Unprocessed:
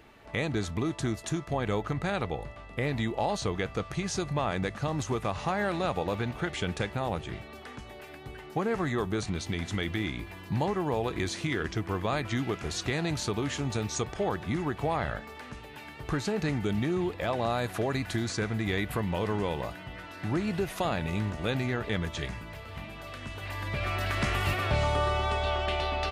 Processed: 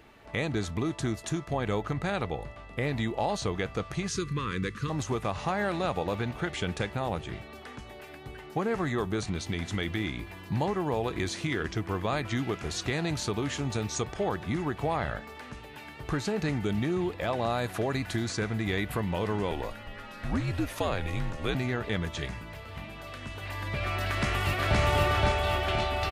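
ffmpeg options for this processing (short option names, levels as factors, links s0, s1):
-filter_complex "[0:a]asettb=1/sr,asplit=3[s0][s1][s2];[s0]atrim=end=4.084[s3];[s1]atrim=start=4.08:end=4.9,asetpts=PTS-STARTPTS,afade=t=in:d=0.004:c=qsin,afade=t=out:st=0.816:d=0.004:c=qsin,asuperstop=centerf=710:order=8:qfactor=1.3[s4];[s2]atrim=start=4.896[s5];[s3][s4]acrossfade=d=0.004:c1=hsin:c2=qsin[s6];[s6][s5]acrossfade=d=0.004:c1=qsin:c2=hsin,asettb=1/sr,asplit=3[s7][s8][s9];[s7]atrim=end=19.514[s10];[s8]atrim=start=19.51:end=21.55,asetpts=PTS-STARTPTS,afade=t=in:d=0.004:c=qsin,afade=t=out:st=2.036:d=0.004:c=qsin,afreqshift=-79[s11];[s9]atrim=start=21.546[s12];[s10][s11]acrossfade=d=0.004:c1=hsin:c2=qsin[s13];[s13][s12]acrossfade=d=0.004:c1=qsin:c2=hsin,asplit=2[s14][s15];[s15]afade=t=in:st=24.07:d=0.01,afade=t=out:st=24.79:d=0.01,aecho=0:1:520|1040|1560|2080|2600|3120|3640|4160|4680:0.944061|0.566437|0.339862|0.203917|0.12235|0.0734102|0.0440461|0.0264277|0.0158566[s16];[s14][s16]amix=inputs=2:normalize=0"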